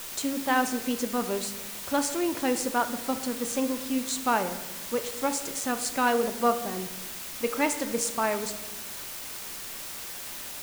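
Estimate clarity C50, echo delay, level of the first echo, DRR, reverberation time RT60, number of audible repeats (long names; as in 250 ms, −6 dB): 11.0 dB, no echo audible, no echo audible, 7.5 dB, 1.0 s, no echo audible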